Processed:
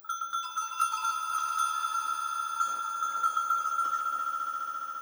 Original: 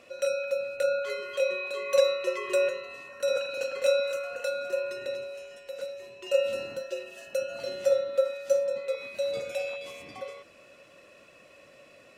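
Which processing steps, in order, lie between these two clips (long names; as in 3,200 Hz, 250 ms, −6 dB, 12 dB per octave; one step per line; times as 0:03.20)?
low-pass that shuts in the quiet parts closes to 340 Hz, open at −21.5 dBFS
echo that builds up and dies away 167 ms, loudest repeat 8, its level −11 dB
steady tone 9,500 Hz −27 dBFS
change of speed 2.43×
level −5 dB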